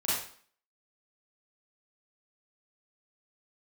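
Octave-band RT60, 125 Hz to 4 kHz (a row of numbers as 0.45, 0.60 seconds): 0.40, 0.50, 0.50, 0.50, 0.50, 0.45 seconds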